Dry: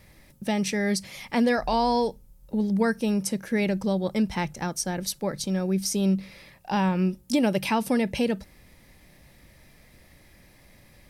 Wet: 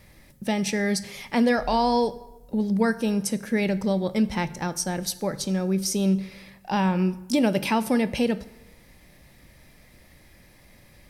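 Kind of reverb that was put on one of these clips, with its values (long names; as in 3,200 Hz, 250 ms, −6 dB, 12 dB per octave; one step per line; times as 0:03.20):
dense smooth reverb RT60 0.99 s, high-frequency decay 0.7×, DRR 13.5 dB
level +1 dB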